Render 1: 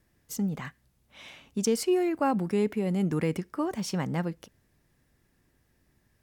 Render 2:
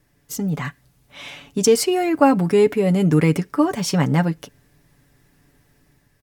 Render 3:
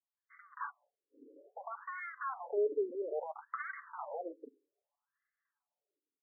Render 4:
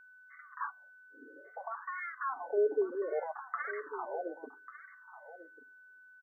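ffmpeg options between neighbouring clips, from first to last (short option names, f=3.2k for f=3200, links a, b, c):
-af "aecho=1:1:7:0.57,dynaudnorm=f=210:g=5:m=4.5dB,volume=5.5dB"
-af "agate=range=-33dB:threshold=-45dB:ratio=3:detection=peak,aeval=exprs='(tanh(15.8*val(0)+0.25)-tanh(0.25))/15.8':c=same,afftfilt=real='re*between(b*sr/1024,360*pow(1600/360,0.5+0.5*sin(2*PI*0.61*pts/sr))/1.41,360*pow(1600/360,0.5+0.5*sin(2*PI*0.61*pts/sr))*1.41)':imag='im*between(b*sr/1024,360*pow(1600/360,0.5+0.5*sin(2*PI*0.61*pts/sr))/1.41,360*pow(1600/360,0.5+0.5*sin(2*PI*0.61*pts/sr))*1.41)':win_size=1024:overlap=0.75,volume=-3dB"
-af "aecho=1:1:1144:0.2,aeval=exprs='val(0)+0.00126*sin(2*PI*1500*n/s)':c=same,volume=3dB"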